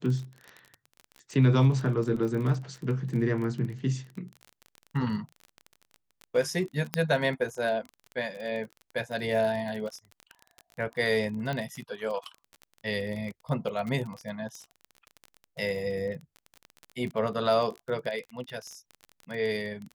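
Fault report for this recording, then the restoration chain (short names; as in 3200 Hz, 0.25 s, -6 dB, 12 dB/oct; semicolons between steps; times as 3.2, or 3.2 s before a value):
crackle 25/s -34 dBFS
6.94 pop -10 dBFS
11.53 pop -20 dBFS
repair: de-click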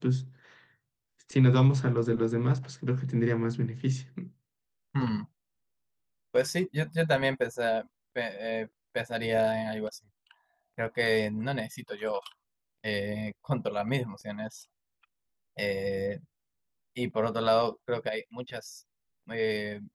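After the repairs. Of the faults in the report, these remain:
6.94 pop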